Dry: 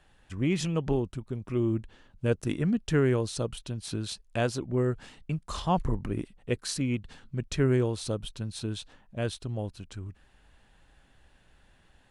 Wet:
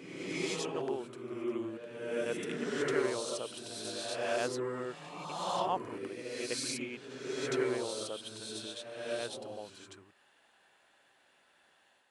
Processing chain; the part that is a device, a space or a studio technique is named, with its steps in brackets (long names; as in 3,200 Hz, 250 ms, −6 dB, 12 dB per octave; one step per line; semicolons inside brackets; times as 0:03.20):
ghost voice (reversed playback; convolution reverb RT60 1.5 s, pre-delay 66 ms, DRR −3 dB; reversed playback; high-pass filter 490 Hz 12 dB per octave)
level −5 dB